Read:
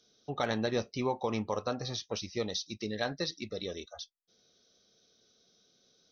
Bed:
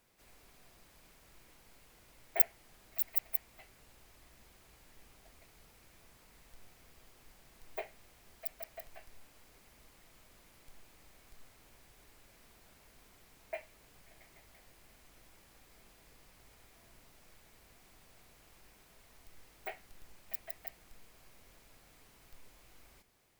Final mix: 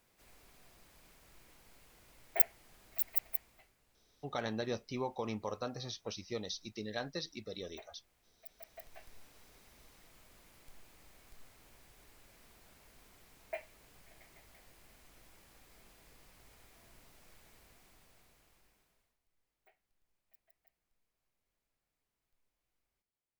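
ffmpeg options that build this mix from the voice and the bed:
-filter_complex "[0:a]adelay=3950,volume=-6dB[a];[1:a]volume=12dB,afade=t=out:st=3.21:d=0.55:silence=0.251189,afade=t=in:st=8.47:d=0.61:silence=0.237137,afade=t=out:st=17.51:d=1.66:silence=0.0473151[b];[a][b]amix=inputs=2:normalize=0"

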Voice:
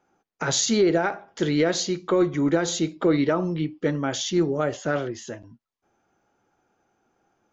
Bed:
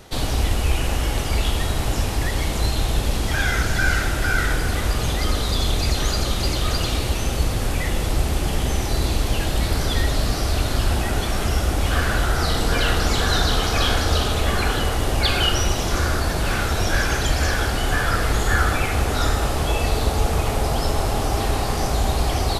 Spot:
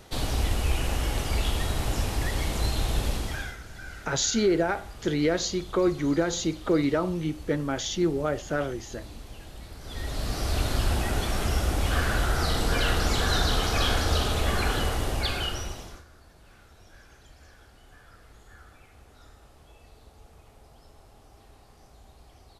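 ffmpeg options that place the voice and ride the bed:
-filter_complex "[0:a]adelay=3650,volume=-3dB[a];[1:a]volume=11.5dB,afade=t=out:st=3.06:d=0.51:silence=0.149624,afade=t=in:st=9.81:d=0.79:silence=0.141254,afade=t=out:st=14.83:d=1.21:silence=0.0421697[b];[a][b]amix=inputs=2:normalize=0"

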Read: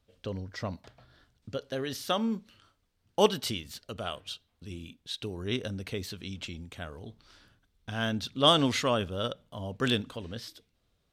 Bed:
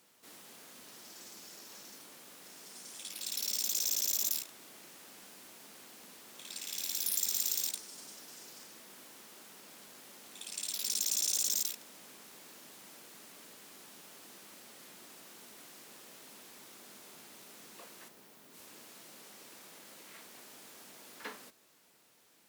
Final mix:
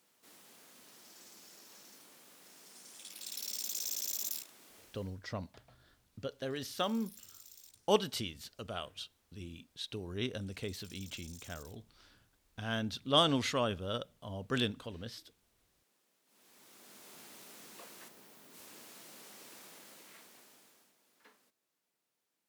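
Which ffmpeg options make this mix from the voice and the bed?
-filter_complex "[0:a]adelay=4700,volume=-5dB[a];[1:a]volume=17.5dB,afade=t=out:st=4.78:d=0.42:silence=0.133352,afade=t=in:st=16.25:d=0.97:silence=0.0707946,afade=t=out:st=19.6:d=1.35:silence=0.112202[b];[a][b]amix=inputs=2:normalize=0"

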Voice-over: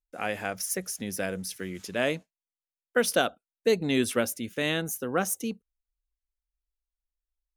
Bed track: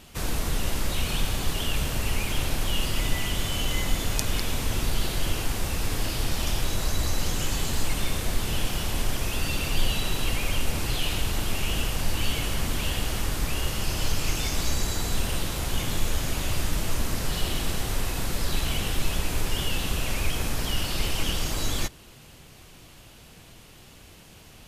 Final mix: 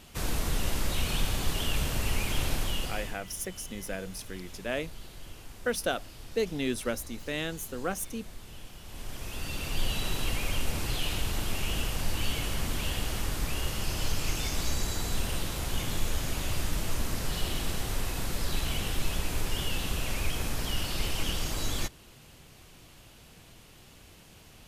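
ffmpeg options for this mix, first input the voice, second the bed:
-filter_complex "[0:a]adelay=2700,volume=-5.5dB[a];[1:a]volume=12.5dB,afade=t=out:st=2.53:d=0.67:silence=0.149624,afade=t=in:st=8.82:d=1.24:silence=0.177828[b];[a][b]amix=inputs=2:normalize=0"

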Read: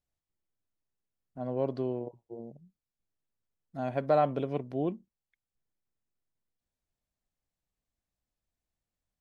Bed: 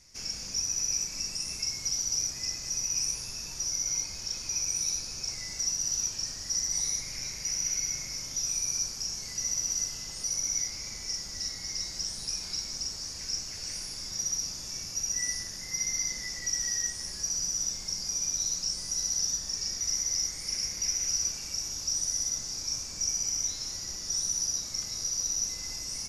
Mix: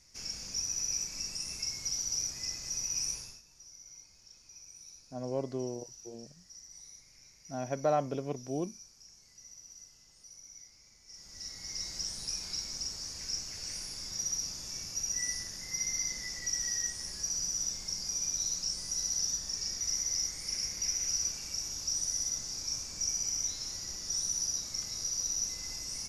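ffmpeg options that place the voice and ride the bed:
-filter_complex "[0:a]adelay=3750,volume=-3.5dB[a];[1:a]volume=14.5dB,afade=t=out:st=3.13:d=0.29:silence=0.133352,afade=t=in:st=11.06:d=0.85:silence=0.11885[b];[a][b]amix=inputs=2:normalize=0"

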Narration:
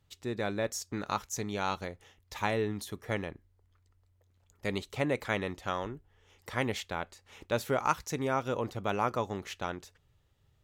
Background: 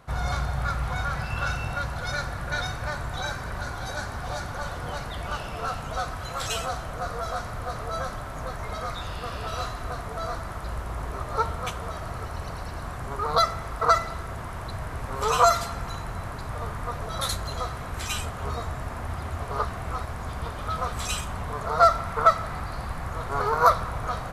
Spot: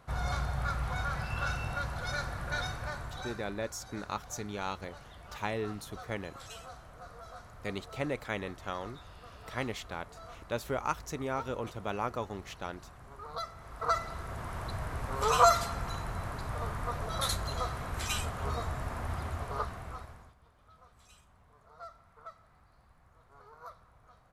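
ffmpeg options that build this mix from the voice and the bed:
-filter_complex "[0:a]adelay=3000,volume=-4dB[a];[1:a]volume=8.5dB,afade=t=out:st=2.63:d=0.97:silence=0.251189,afade=t=in:st=13.54:d=1.03:silence=0.199526,afade=t=out:st=19.18:d=1.17:silence=0.0446684[b];[a][b]amix=inputs=2:normalize=0"

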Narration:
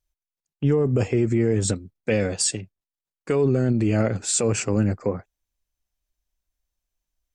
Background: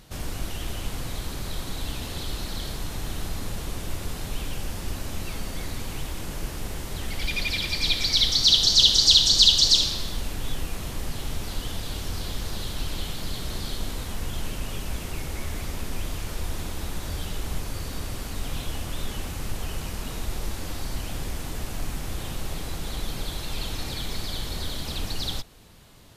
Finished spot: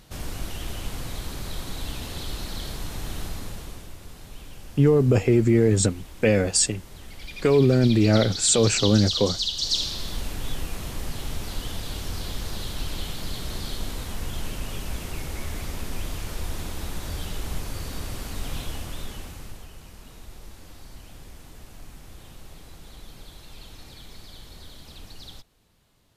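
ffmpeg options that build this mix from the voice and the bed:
-filter_complex "[0:a]adelay=4150,volume=2.5dB[a];[1:a]volume=9.5dB,afade=t=out:st=3.21:d=0.72:silence=0.316228,afade=t=in:st=9.53:d=0.61:silence=0.298538,afade=t=out:st=18.56:d=1.14:silence=0.237137[b];[a][b]amix=inputs=2:normalize=0"

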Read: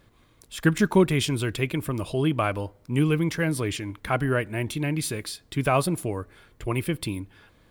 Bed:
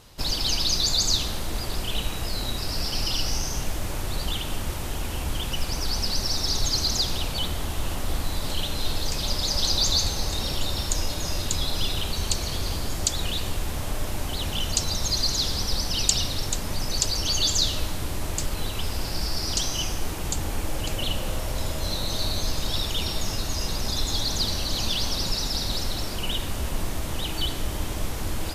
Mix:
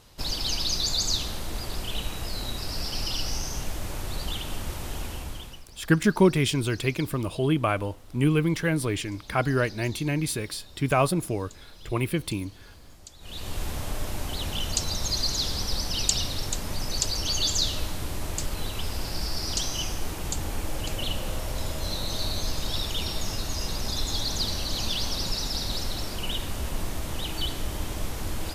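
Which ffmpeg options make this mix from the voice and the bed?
-filter_complex "[0:a]adelay=5250,volume=0dB[a];[1:a]volume=16.5dB,afade=t=out:st=5.01:d=0.63:silence=0.112202,afade=t=in:st=13.2:d=0.42:silence=0.1[b];[a][b]amix=inputs=2:normalize=0"

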